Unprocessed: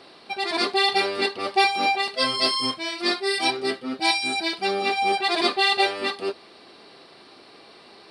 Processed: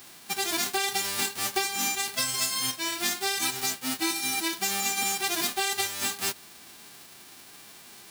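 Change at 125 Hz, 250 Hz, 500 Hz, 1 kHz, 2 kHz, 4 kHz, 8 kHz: 0.0, −6.5, −12.0, −9.5, −6.0, −5.5, +12.0 decibels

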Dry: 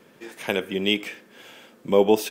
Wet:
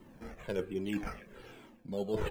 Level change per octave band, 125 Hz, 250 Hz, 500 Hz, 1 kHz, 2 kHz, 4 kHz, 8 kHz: −6.0, −11.0, −14.5, −15.5, −15.5, −22.5, −19.0 decibels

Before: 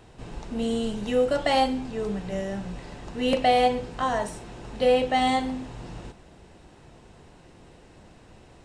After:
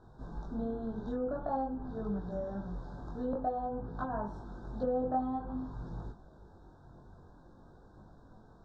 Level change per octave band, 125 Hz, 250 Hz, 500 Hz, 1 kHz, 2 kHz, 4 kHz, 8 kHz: −5.0 dB, −8.0 dB, −12.0 dB, −12.0 dB, −20.5 dB, below −30 dB, below −30 dB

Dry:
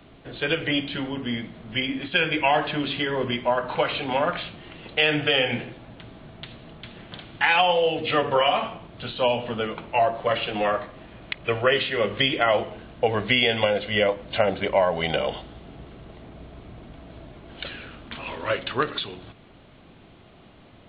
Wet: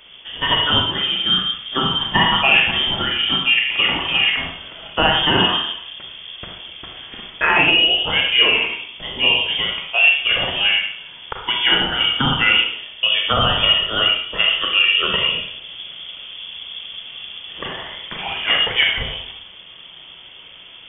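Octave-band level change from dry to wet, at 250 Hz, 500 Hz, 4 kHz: +1.0, −5.0, +14.0 decibels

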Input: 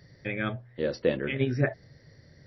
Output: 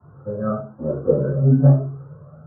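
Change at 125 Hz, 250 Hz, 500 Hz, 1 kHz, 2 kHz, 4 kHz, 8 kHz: +15.5 dB, +10.5 dB, +7.5 dB, +7.0 dB, below −10 dB, below −40 dB, can't be measured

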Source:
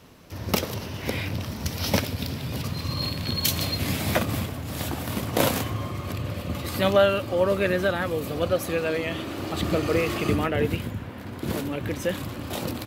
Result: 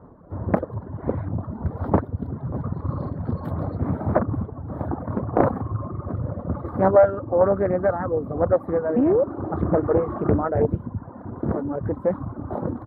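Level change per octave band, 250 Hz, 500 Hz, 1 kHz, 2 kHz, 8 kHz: +3.5 dB, +4.5 dB, +3.5 dB, −9.0 dB, below −40 dB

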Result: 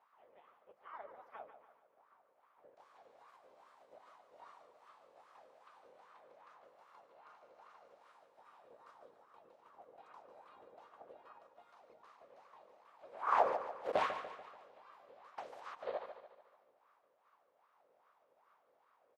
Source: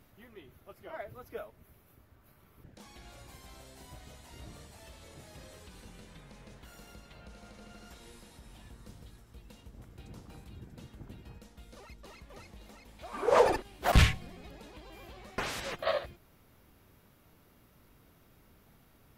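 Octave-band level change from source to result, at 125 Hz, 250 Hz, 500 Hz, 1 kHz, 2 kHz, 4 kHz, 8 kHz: below −30 dB, −18.5 dB, −9.5 dB, −3.0 dB, −11.0 dB, −17.5 dB, below −20 dB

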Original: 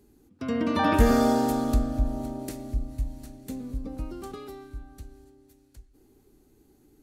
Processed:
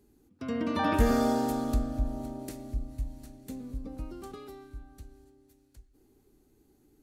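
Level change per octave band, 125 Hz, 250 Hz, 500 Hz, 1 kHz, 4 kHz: −4.5, −4.5, −4.5, −4.5, −4.5 decibels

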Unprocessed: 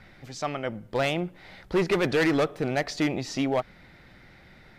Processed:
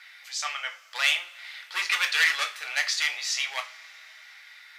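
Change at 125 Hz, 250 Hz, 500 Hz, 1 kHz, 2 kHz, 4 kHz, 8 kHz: below −40 dB, below −40 dB, −22.0 dB, −3.0 dB, +7.5 dB, +9.5 dB, +10.0 dB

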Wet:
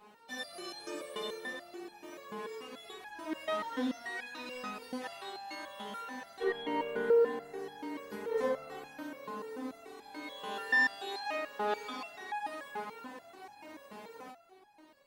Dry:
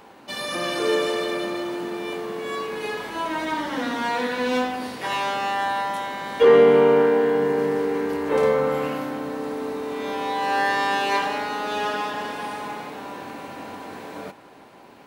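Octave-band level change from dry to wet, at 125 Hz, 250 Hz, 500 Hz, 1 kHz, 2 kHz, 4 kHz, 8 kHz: below −20 dB, −14.5 dB, −15.5 dB, −15.5 dB, −8.5 dB, −13.0 dB, can't be measured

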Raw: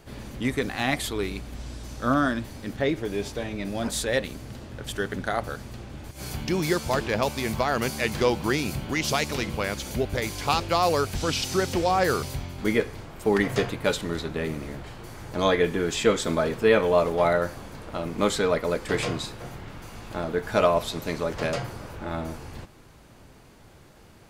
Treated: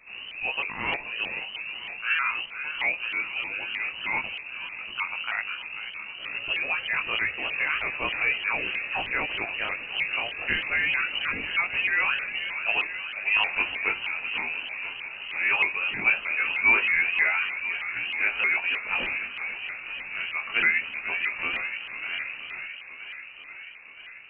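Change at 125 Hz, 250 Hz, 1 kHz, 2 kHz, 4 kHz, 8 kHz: −20.5 dB, −18.0 dB, −6.5 dB, +8.5 dB, +0.5 dB, below −40 dB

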